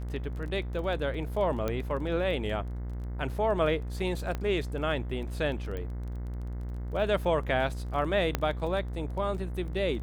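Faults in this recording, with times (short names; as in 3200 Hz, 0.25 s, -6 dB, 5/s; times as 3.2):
buzz 60 Hz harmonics 36 -35 dBFS
crackle 19/s -38 dBFS
1.68 pop -17 dBFS
4.35 pop -20 dBFS
5.77 pop -25 dBFS
8.35 pop -12 dBFS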